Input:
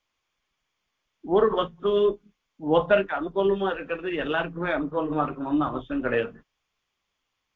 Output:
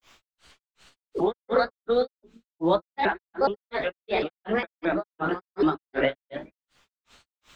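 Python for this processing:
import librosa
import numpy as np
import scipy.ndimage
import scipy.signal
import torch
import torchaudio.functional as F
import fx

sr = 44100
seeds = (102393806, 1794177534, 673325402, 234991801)

p1 = fx.pitch_ramps(x, sr, semitones=6.0, every_ms=427)
p2 = p1 + fx.echo_single(p1, sr, ms=120, db=-4.5, dry=0)
p3 = fx.granulator(p2, sr, seeds[0], grain_ms=227.0, per_s=2.7, spray_ms=100.0, spread_st=0)
p4 = fx.band_squash(p3, sr, depth_pct=70)
y = p4 * librosa.db_to_amplitude(4.5)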